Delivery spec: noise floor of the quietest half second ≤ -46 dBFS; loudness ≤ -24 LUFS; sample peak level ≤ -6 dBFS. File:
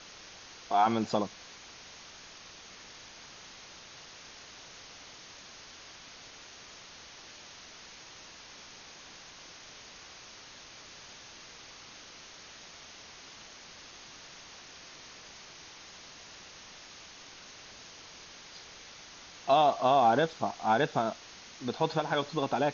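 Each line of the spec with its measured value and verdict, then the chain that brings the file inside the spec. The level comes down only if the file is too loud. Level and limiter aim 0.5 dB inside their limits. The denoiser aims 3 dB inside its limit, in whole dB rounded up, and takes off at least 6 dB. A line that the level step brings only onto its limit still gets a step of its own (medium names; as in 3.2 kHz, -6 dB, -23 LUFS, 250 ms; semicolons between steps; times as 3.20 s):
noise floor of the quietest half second -50 dBFS: pass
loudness -28.5 LUFS: pass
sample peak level -14.5 dBFS: pass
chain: none needed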